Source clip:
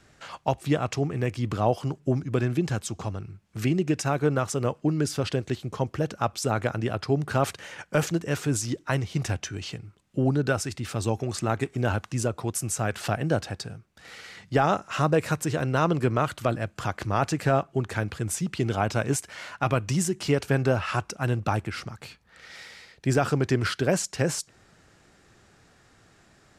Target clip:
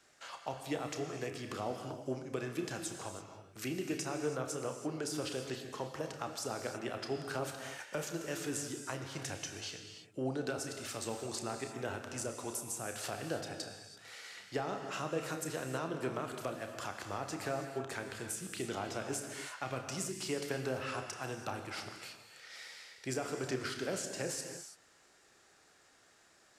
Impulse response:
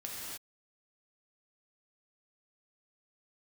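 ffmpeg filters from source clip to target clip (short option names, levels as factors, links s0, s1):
-filter_complex "[0:a]bass=f=250:g=-15,treble=f=4000:g=5,acrossover=split=380[s0][s1];[s1]acompressor=threshold=0.0282:ratio=6[s2];[s0][s2]amix=inputs=2:normalize=0,asplit=2[s3][s4];[1:a]atrim=start_sample=2205,adelay=31[s5];[s4][s5]afir=irnorm=-1:irlink=0,volume=0.596[s6];[s3][s6]amix=inputs=2:normalize=0,volume=0.422"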